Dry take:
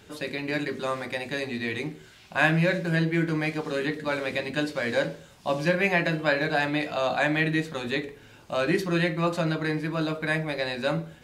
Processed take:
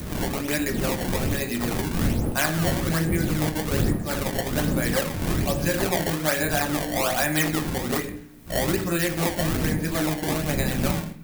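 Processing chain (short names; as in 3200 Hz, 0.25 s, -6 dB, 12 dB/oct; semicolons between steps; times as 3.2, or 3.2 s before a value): wind noise 220 Hz -26 dBFS; decimation with a swept rate 20×, swing 160% 1.2 Hz; compressor 6:1, threshold -23 dBFS, peak gain reduction 14.5 dB; expander -35 dBFS; requantised 12-bit, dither triangular; on a send at -7.5 dB: reverb RT60 0.70 s, pre-delay 21 ms; on the sum: upward compressor, threshold -37 dBFS; high shelf 8100 Hz +10 dB; notch 1000 Hz, Q 20; gain +2.5 dB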